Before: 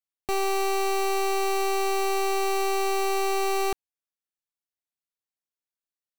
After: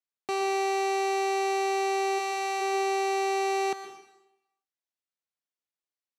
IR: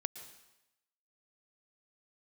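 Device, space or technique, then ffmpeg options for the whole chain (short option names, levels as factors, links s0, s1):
supermarket ceiling speaker: -filter_complex "[0:a]asplit=3[s0][s1][s2];[s0]afade=t=out:st=2.18:d=0.02[s3];[s1]highpass=550,afade=t=in:st=2.18:d=0.02,afade=t=out:st=2.6:d=0.02[s4];[s2]afade=t=in:st=2.6:d=0.02[s5];[s3][s4][s5]amix=inputs=3:normalize=0,highpass=220,lowpass=6900[s6];[1:a]atrim=start_sample=2205[s7];[s6][s7]afir=irnorm=-1:irlink=0,volume=0.891"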